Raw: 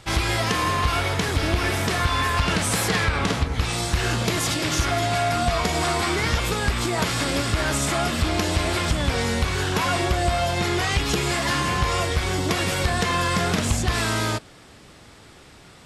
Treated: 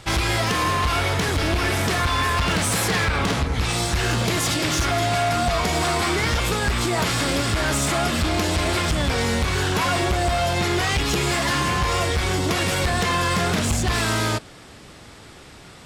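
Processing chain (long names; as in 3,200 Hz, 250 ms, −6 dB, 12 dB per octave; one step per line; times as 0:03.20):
in parallel at −0.5 dB: brickwall limiter −18.5 dBFS, peak gain reduction 7.5 dB
on the sum: gain into a clipping stage and back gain 14.5 dB
level −2 dB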